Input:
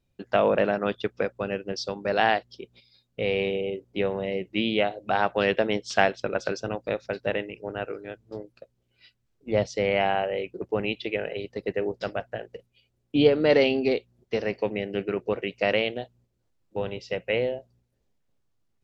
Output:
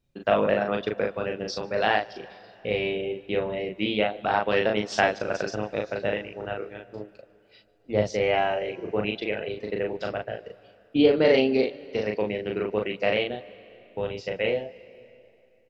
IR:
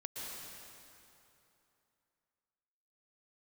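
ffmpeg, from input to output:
-filter_complex "[0:a]atempo=1.2,asplit=2[link_01][link_02];[link_02]adelay=38,volume=-3dB[link_03];[link_01][link_03]amix=inputs=2:normalize=0,asplit=2[link_04][link_05];[1:a]atrim=start_sample=2205,adelay=149[link_06];[link_05][link_06]afir=irnorm=-1:irlink=0,volume=-20dB[link_07];[link_04][link_07]amix=inputs=2:normalize=0,volume=-1.5dB"

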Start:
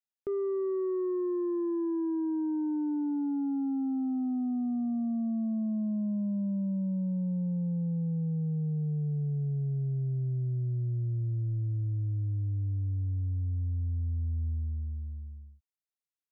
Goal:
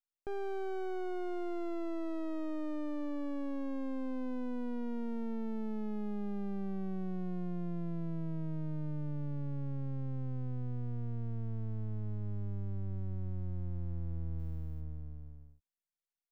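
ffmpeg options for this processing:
ffmpeg -i in.wav -filter_complex "[0:a]aeval=exprs='max(val(0),0)':channel_layout=same,asplit=3[link_01][link_02][link_03];[link_01]afade=type=out:start_time=14.38:duration=0.02[link_04];[link_02]aemphasis=mode=production:type=75fm,afade=type=in:start_time=14.38:duration=0.02,afade=type=out:start_time=14.8:duration=0.02[link_05];[link_03]afade=type=in:start_time=14.8:duration=0.02[link_06];[link_04][link_05][link_06]amix=inputs=3:normalize=0,volume=-2.5dB" out.wav

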